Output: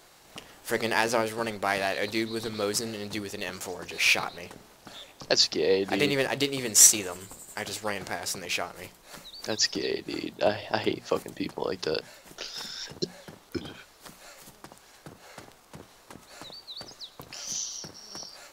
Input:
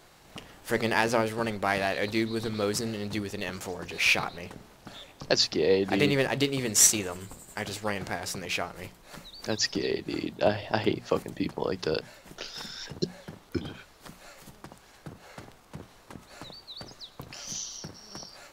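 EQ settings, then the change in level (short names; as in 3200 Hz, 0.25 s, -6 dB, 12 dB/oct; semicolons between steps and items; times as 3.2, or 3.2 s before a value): tone controls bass -6 dB, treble +4 dB; 0.0 dB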